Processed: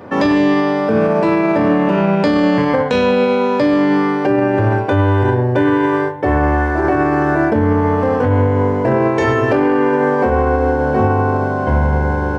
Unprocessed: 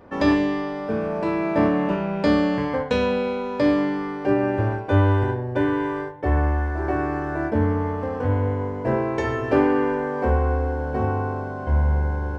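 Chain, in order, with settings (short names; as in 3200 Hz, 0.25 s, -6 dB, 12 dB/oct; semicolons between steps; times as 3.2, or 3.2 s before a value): HPF 92 Hz 24 dB/oct; maximiser +18 dB; gain -5 dB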